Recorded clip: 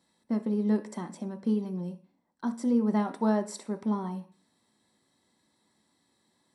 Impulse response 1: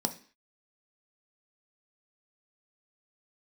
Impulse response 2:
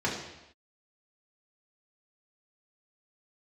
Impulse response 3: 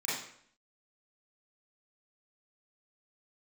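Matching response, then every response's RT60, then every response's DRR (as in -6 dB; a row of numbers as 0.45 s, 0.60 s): 1; 0.45 s, no single decay rate, 0.60 s; 6.5 dB, -5.0 dB, -9.5 dB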